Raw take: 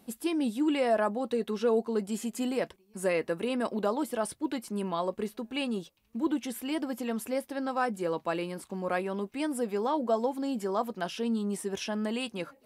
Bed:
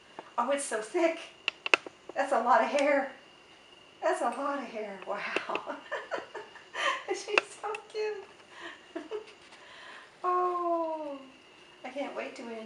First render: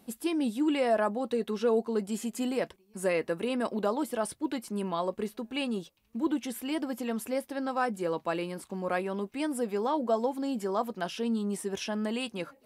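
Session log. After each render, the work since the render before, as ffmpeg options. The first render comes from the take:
ffmpeg -i in.wav -af anull out.wav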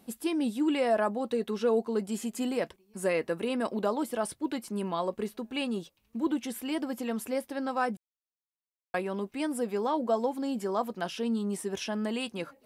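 ffmpeg -i in.wav -filter_complex "[0:a]asplit=3[link_01][link_02][link_03];[link_01]atrim=end=7.97,asetpts=PTS-STARTPTS,afade=type=out:start_time=7.966:duration=0.004:curve=hsin[link_04];[link_02]atrim=start=7.97:end=8.94,asetpts=PTS-STARTPTS,volume=0[link_05];[link_03]atrim=start=8.94,asetpts=PTS-STARTPTS,afade=type=in:duration=0.004:curve=hsin[link_06];[link_04][link_05][link_06]concat=n=3:v=0:a=1" out.wav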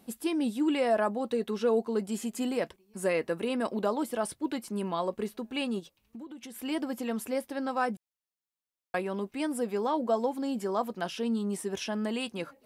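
ffmpeg -i in.wav -filter_complex "[0:a]asplit=3[link_01][link_02][link_03];[link_01]afade=type=out:start_time=5.79:duration=0.02[link_04];[link_02]acompressor=threshold=-40dB:ratio=16:attack=3.2:release=140:knee=1:detection=peak,afade=type=in:start_time=5.79:duration=0.02,afade=type=out:start_time=6.58:duration=0.02[link_05];[link_03]afade=type=in:start_time=6.58:duration=0.02[link_06];[link_04][link_05][link_06]amix=inputs=3:normalize=0" out.wav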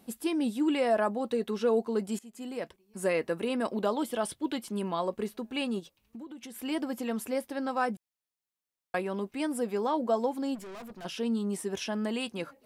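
ffmpeg -i in.wav -filter_complex "[0:a]asettb=1/sr,asplit=3[link_01][link_02][link_03];[link_01]atrim=end=3.844[link_04];[link_02]atrim=start=3.84:end=4.79,asetpts=PTS-STARTPTS,afade=type=in:duration=0.004:curve=qsin,afade=type=out:start_time=0.946:duration=0.004:curve=qsin,equalizer=frequency=3300:width_type=o:width=0.38:gain=8[link_05];[link_03]atrim=start=4.786[link_06];[link_04][link_05]acrossfade=duration=0.004:curve1=hsin:curve2=qsin[link_07];[link_07][link_06]acrossfade=duration=0.004:curve1=qsin:curve2=hsin,asplit=3[link_08][link_09][link_10];[link_08]afade=type=out:start_time=10.54:duration=0.02[link_11];[link_09]aeval=exprs='(tanh(126*val(0)+0.25)-tanh(0.25))/126':channel_layout=same,afade=type=in:start_time=10.54:duration=0.02,afade=type=out:start_time=11.04:duration=0.02[link_12];[link_10]afade=type=in:start_time=11.04:duration=0.02[link_13];[link_11][link_12][link_13]amix=inputs=3:normalize=0,asplit=2[link_14][link_15];[link_14]atrim=end=2.19,asetpts=PTS-STARTPTS,afade=type=out:start_time=2.186:duration=0.004:curve=hsin:silence=0.0944061[link_16];[link_15]atrim=start=2.19,asetpts=PTS-STARTPTS,afade=type=in:duration=0.86:silence=0.0944061[link_17];[link_16][link_17]concat=n=2:v=0:a=1" out.wav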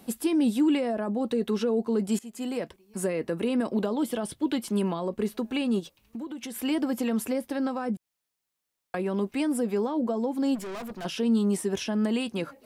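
ffmpeg -i in.wav -filter_complex "[0:a]asplit=2[link_01][link_02];[link_02]alimiter=level_in=0.5dB:limit=-24dB:level=0:latency=1:release=12,volume=-0.5dB,volume=2.5dB[link_03];[link_01][link_03]amix=inputs=2:normalize=0,acrossover=split=390[link_04][link_05];[link_05]acompressor=threshold=-32dB:ratio=10[link_06];[link_04][link_06]amix=inputs=2:normalize=0" out.wav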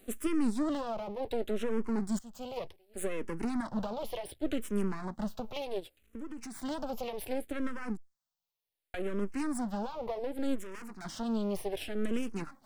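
ffmpeg -i in.wav -filter_complex "[0:a]aeval=exprs='max(val(0),0)':channel_layout=same,asplit=2[link_01][link_02];[link_02]afreqshift=-0.67[link_03];[link_01][link_03]amix=inputs=2:normalize=1" out.wav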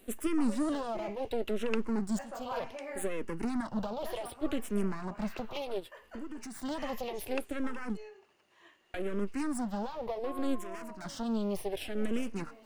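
ffmpeg -i in.wav -i bed.wav -filter_complex "[1:a]volume=-16dB[link_01];[0:a][link_01]amix=inputs=2:normalize=0" out.wav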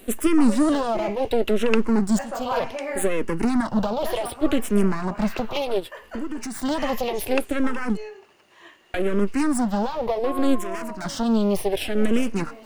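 ffmpeg -i in.wav -af "volume=12dB" out.wav

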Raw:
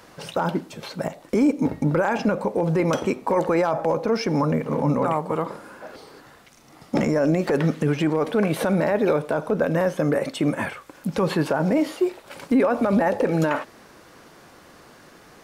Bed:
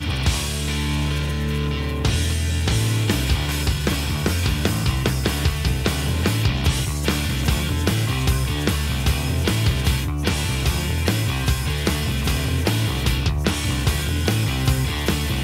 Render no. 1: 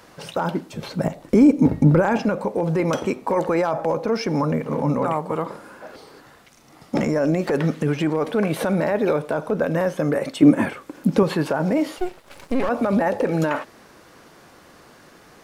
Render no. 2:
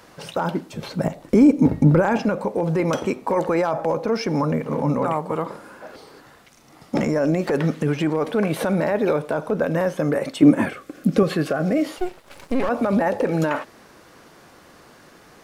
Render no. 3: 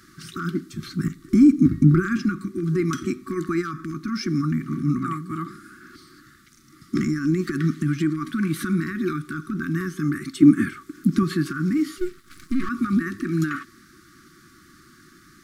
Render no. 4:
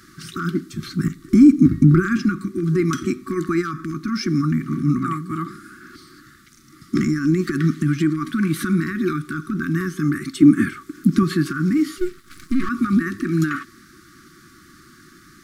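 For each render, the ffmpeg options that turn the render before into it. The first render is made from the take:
ffmpeg -i in.wav -filter_complex "[0:a]asettb=1/sr,asplit=3[link_01][link_02][link_03];[link_01]atrim=end=0.744[link_04];[link_02]atrim=start=0.74:end=2.19,asetpts=PTS-STARTPTS,afade=type=in:duration=0.004:curve=qsin,afade=type=out:start_time=1.446:duration=0.004:curve=qsin,lowshelf=frequency=320:gain=10.5[link_05];[link_03]atrim=start=2.186[link_06];[link_04][link_05]acrossfade=duration=0.004:curve1=hsin:curve2=qsin[link_07];[link_07][link_06]acrossfade=duration=0.004:curve1=qsin:curve2=hsin,asettb=1/sr,asplit=3[link_08][link_09][link_10];[link_08]atrim=end=10.424[link_11];[link_09]atrim=start=10.42:end=11.23,asetpts=PTS-STARTPTS,afade=type=in:duration=0.004:curve=qsin,afade=type=out:start_time=0.806:duration=0.004:curve=qsin,equalizer=frequency=280:width_type=o:width=1.4:gain=11.5[link_12];[link_10]atrim=start=11.226[link_13];[link_11][link_12]acrossfade=duration=0.004:curve1=hsin:curve2=qsin[link_14];[link_14][link_13]acrossfade=duration=0.004:curve1=qsin:curve2=hsin,asettb=1/sr,asplit=3[link_15][link_16][link_17];[link_15]atrim=end=11.984[link_18];[link_16]atrim=start=11.98:end=12.69,asetpts=PTS-STARTPTS,afade=type=in:duration=0.004:curve=qsin,afade=type=out:start_time=0.706:duration=0.004:curve=qsin,aeval=exprs='max(val(0),0)':channel_layout=same[link_19];[link_17]atrim=start=12.686[link_20];[link_18][link_19]acrossfade=duration=0.004:curve1=hsin:curve2=qsin[link_21];[link_21][link_20]acrossfade=duration=0.004:curve1=qsin:curve2=hsin" out.wav
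ffmpeg -i in.wav -filter_complex "[0:a]asettb=1/sr,asplit=3[link_01][link_02][link_03];[link_01]atrim=end=10.664[link_04];[link_02]atrim=start=10.66:end=11.85,asetpts=PTS-STARTPTS,afade=type=in:duration=0.004:curve=qsin,afade=type=out:start_time=1.186:duration=0.004:curve=qsin,asuperstop=centerf=920:order=8:qfactor=3.7[link_05];[link_03]atrim=start=11.846[link_06];[link_04][link_05]acrossfade=duration=0.004:curve1=hsin:curve2=qsin[link_07];[link_07][link_06]acrossfade=duration=0.004:curve1=qsin:curve2=hsin" out.wav
ffmpeg -i in.wav -af "afftfilt=real='re*(1-between(b*sr/4096,380,1100))':imag='im*(1-between(b*sr/4096,380,1100))':win_size=4096:overlap=0.75,equalizer=frequency=2700:width=2.5:gain=-9.5" out.wav
ffmpeg -i in.wav -af "volume=3.5dB,alimiter=limit=-3dB:level=0:latency=1" out.wav

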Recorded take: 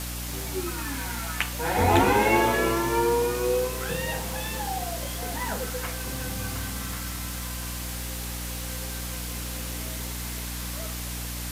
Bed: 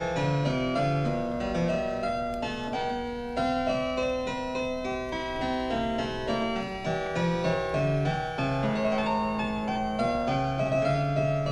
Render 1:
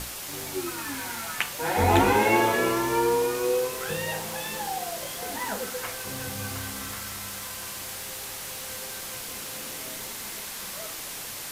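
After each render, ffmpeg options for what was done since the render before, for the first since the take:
ffmpeg -i in.wav -af "bandreject=frequency=60:width_type=h:width=6,bandreject=frequency=120:width_type=h:width=6,bandreject=frequency=180:width_type=h:width=6,bandreject=frequency=240:width_type=h:width=6,bandreject=frequency=300:width_type=h:width=6" out.wav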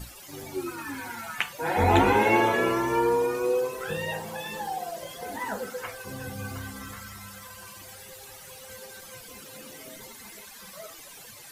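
ffmpeg -i in.wav -af "afftdn=noise_reduction=15:noise_floor=-37" out.wav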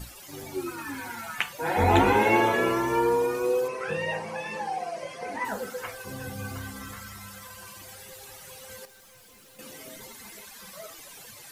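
ffmpeg -i in.wav -filter_complex "[0:a]asettb=1/sr,asplit=3[link_01][link_02][link_03];[link_01]atrim=end=3.684[link_04];[link_02]atrim=start=3.68:end=5.45,asetpts=PTS-STARTPTS,afade=type=in:duration=0.004:curve=qsin,afade=type=out:start_time=1.766:duration=0.004:curve=qsin,highpass=110,equalizer=frequency=570:width_type=q:width=4:gain=4,equalizer=frequency=1100:width_type=q:width=4:gain=4,equalizer=frequency=2300:width_type=q:width=4:gain=9,equalizer=frequency=3500:width_type=q:width=4:gain=-8,equalizer=frequency=7400:width_type=q:width=4:gain=-8,lowpass=frequency=8700:width=0.5412,lowpass=frequency=8700:width=1.3066[link_05];[link_03]atrim=start=5.446[link_06];[link_04][link_05]acrossfade=duration=0.004:curve1=hsin:curve2=qsin[link_07];[link_07][link_06]acrossfade=duration=0.004:curve1=qsin:curve2=hsin,asettb=1/sr,asplit=3[link_08][link_09][link_10];[link_08]atrim=end=8.854[link_11];[link_09]atrim=start=8.85:end=9.59,asetpts=PTS-STARTPTS,afade=type=in:duration=0.004:curve=qsin,afade=type=out:start_time=0.736:duration=0.004:curve=qsin,aeval=exprs='(tanh(398*val(0)+0.2)-tanh(0.2))/398':channel_layout=same[link_12];[link_10]atrim=start=9.586[link_13];[link_11][link_12]acrossfade=duration=0.004:curve1=hsin:curve2=qsin[link_14];[link_14][link_13]acrossfade=duration=0.004:curve1=qsin:curve2=hsin" out.wav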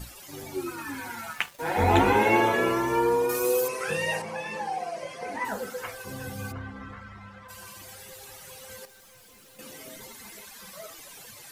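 ffmpeg -i in.wav -filter_complex "[0:a]asettb=1/sr,asplit=3[link_01][link_02][link_03];[link_01]atrim=end=1.334[link_04];[link_02]atrim=start=1.33:end=2.1,asetpts=PTS-STARTPTS,afade=type=in:duration=0.004:curve=qsin,afade=type=out:start_time=0.766:duration=0.004:curve=qsin,aeval=exprs='sgn(val(0))*max(abs(val(0))-0.0075,0)':channel_layout=same[link_05];[link_03]atrim=start=2.096[link_06];[link_04][link_05]acrossfade=duration=0.004:curve1=hsin:curve2=qsin[link_07];[link_07][link_06]acrossfade=duration=0.004:curve1=qsin:curve2=hsin,asettb=1/sr,asplit=3[link_08][link_09][link_10];[link_08]atrim=end=3.294[link_11];[link_09]atrim=start=3.29:end=4.22,asetpts=PTS-STARTPTS,afade=type=in:duration=0.004:curve=qsin,afade=type=out:start_time=0.926:duration=0.004:curve=qsin,aemphasis=mode=production:type=75kf[link_12];[link_10]atrim=start=4.216[link_13];[link_11][link_12]acrossfade=duration=0.004:curve1=hsin:curve2=qsin[link_14];[link_14][link_13]acrossfade=duration=0.004:curve1=qsin:curve2=hsin,asplit=3[link_15][link_16][link_17];[link_15]afade=type=out:start_time=6.51:duration=0.02[link_18];[link_16]lowpass=2000,afade=type=in:start_time=6.51:duration=0.02,afade=type=out:start_time=7.48:duration=0.02[link_19];[link_17]afade=type=in:start_time=7.48:duration=0.02[link_20];[link_18][link_19][link_20]amix=inputs=3:normalize=0" out.wav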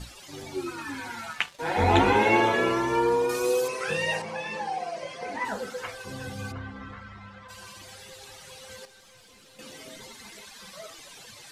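ffmpeg -i in.wav -af "lowpass=8300,equalizer=frequency=3800:width=1.5:gain=4" out.wav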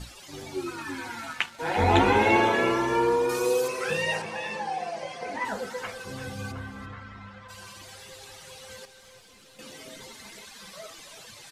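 ffmpeg -i in.wav -af "aecho=1:1:338:0.224" out.wav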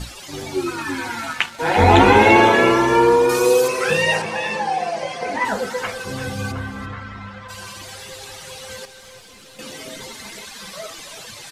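ffmpeg -i in.wav -af "volume=9.5dB,alimiter=limit=-1dB:level=0:latency=1" out.wav

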